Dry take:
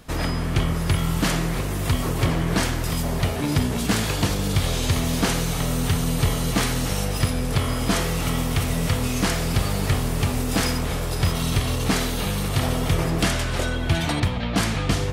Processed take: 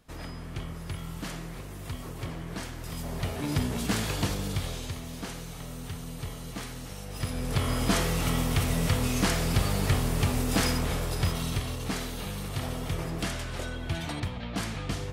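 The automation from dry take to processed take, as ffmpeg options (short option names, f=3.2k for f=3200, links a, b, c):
-af "volume=6dB,afade=t=in:st=2.73:d=0.85:silence=0.375837,afade=t=out:st=4.25:d=0.73:silence=0.334965,afade=t=in:st=7.05:d=0.7:silence=0.237137,afade=t=out:st=10.87:d=0.89:silence=0.446684"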